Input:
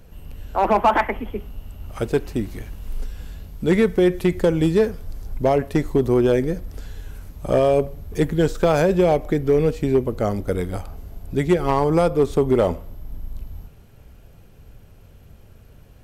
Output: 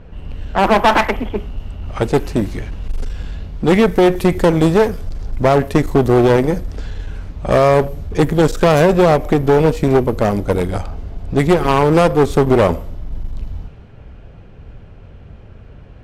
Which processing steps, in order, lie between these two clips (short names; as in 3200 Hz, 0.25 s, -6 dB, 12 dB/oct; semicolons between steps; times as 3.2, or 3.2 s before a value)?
vibrato 0.3 Hz 8.8 cents; one-sided clip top -28.5 dBFS, bottom -11 dBFS; low-pass opened by the level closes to 2400 Hz, open at -20.5 dBFS; gain +9 dB